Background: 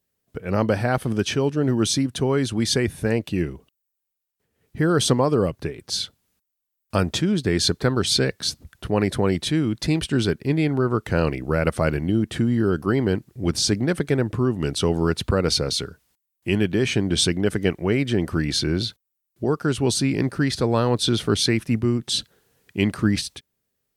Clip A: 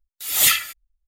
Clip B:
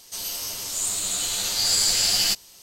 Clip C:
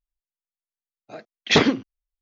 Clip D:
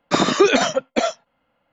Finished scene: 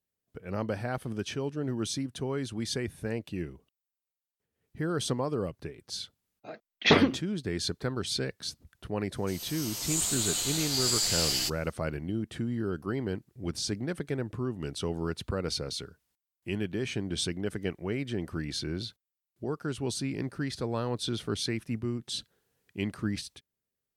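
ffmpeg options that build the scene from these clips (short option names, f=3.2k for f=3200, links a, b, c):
-filter_complex "[0:a]volume=-11.5dB[a];[3:a]lowpass=4.6k[b];[2:a]dynaudnorm=f=190:g=5:m=13dB[c];[b]atrim=end=2.21,asetpts=PTS-STARTPTS,volume=-4dB,afade=t=in:d=0.004:c=hsin,afade=t=out:st=2.206:d=0.004:c=hsin,adelay=5350[d];[c]atrim=end=2.62,asetpts=PTS-STARTPTS,volume=-14dB,afade=t=in:d=0.004:c=hsin,afade=t=out:st=2.616:d=0.004:c=hsin,adelay=9150[e];[a][d][e]amix=inputs=3:normalize=0"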